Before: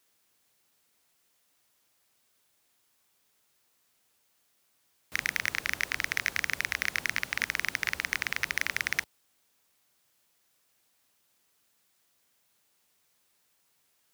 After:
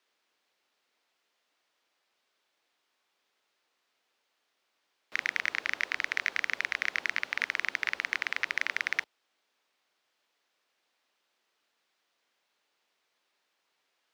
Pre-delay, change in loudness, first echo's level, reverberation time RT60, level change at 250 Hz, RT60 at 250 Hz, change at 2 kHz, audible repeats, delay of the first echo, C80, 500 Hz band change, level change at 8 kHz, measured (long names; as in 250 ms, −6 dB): no reverb audible, −0.5 dB, no echo audible, no reverb audible, −6.0 dB, no reverb audible, 0.0 dB, no echo audible, no echo audible, no reverb audible, −1.0 dB, −9.0 dB